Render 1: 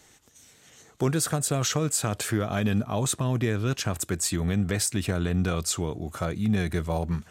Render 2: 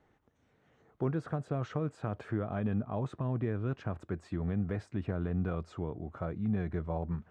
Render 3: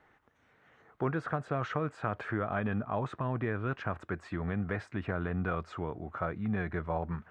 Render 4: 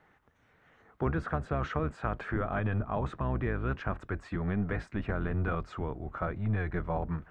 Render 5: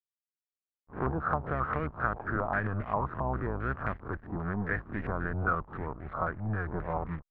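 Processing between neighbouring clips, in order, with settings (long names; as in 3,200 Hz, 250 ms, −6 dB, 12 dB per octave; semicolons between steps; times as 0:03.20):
low-pass filter 1,300 Hz 12 dB per octave; level −7 dB
parametric band 1,600 Hz +12.5 dB 2.4 octaves; level −2 dB
sub-octave generator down 1 octave, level 0 dB
peak hold with a rise ahead of every peak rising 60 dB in 0.37 s; slack as between gear wheels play −36.5 dBFS; low-pass on a step sequencer 7.5 Hz 840–2,000 Hz; level −3 dB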